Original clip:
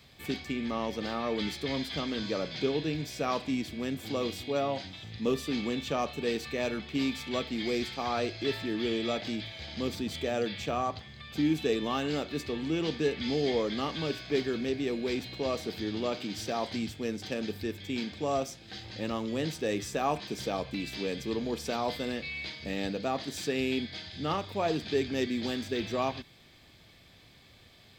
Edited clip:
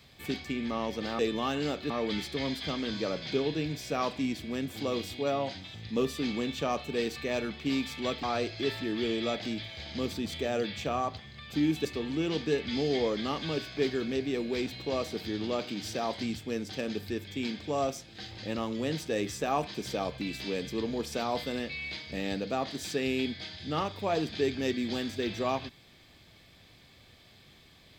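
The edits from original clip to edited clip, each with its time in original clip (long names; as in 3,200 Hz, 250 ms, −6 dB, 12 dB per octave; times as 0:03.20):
0:07.52–0:08.05: remove
0:11.67–0:12.38: move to 0:01.19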